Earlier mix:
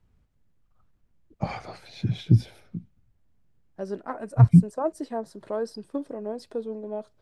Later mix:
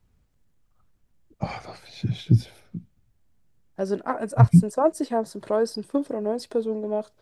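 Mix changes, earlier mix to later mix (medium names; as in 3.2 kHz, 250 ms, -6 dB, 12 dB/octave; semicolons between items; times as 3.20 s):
second voice +6.5 dB; master: add treble shelf 5.1 kHz +5 dB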